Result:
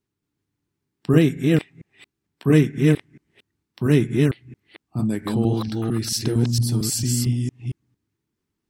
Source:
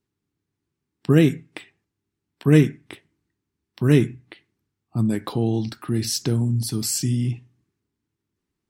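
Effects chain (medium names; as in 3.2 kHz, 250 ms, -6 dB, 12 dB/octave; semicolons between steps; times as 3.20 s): chunks repeated in reverse 227 ms, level -1.5 dB; trim -1 dB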